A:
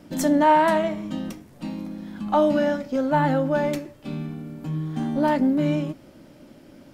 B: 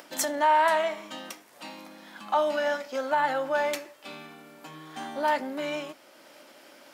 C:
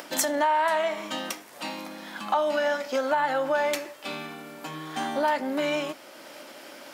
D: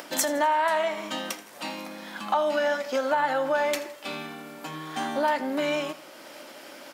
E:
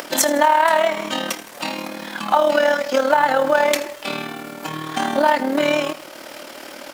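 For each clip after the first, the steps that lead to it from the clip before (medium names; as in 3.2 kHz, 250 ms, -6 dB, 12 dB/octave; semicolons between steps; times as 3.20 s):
peak limiter -15 dBFS, peak gain reduction 6 dB; upward compressor, threshold -39 dBFS; high-pass 790 Hz 12 dB/octave; trim +3.5 dB
compression 3:1, threshold -31 dBFS, peak gain reduction 10 dB; trim +7.5 dB
feedback delay 82 ms, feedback 49%, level -18 dB
in parallel at -9.5 dB: short-mantissa float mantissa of 2-bit; on the sum: AM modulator 38 Hz, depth 45%; crackle 220 per s -40 dBFS; trim +8.5 dB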